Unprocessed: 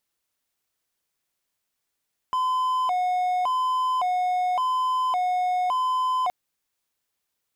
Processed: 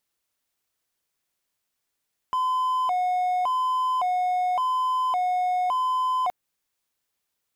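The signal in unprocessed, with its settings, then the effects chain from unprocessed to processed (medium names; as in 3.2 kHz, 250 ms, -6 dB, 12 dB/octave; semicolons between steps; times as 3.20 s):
siren hi-lo 728–1020 Hz 0.89 per s triangle -19 dBFS 3.97 s
dynamic bell 4.6 kHz, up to -4 dB, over -47 dBFS, Q 0.86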